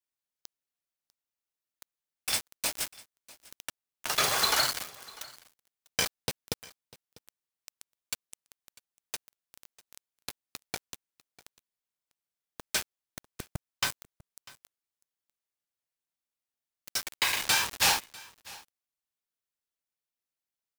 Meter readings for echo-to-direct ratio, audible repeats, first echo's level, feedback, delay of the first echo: -22.0 dB, 1, -22.0 dB, no steady repeat, 0.647 s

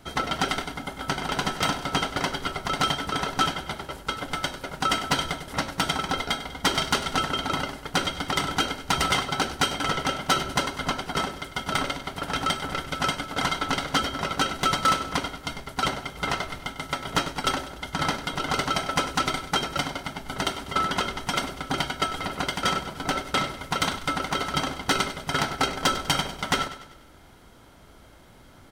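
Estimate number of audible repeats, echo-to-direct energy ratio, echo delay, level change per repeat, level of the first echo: 4, -12.0 dB, 98 ms, -6.5 dB, -13.0 dB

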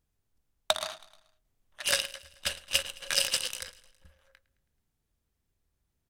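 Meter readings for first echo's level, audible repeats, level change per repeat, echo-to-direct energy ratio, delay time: -19.5 dB, 3, -5.0 dB, -18.0 dB, 0.108 s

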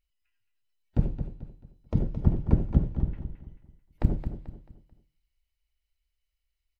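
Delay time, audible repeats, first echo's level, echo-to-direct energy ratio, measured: 0.219 s, 3, -9.5 dB, -9.0 dB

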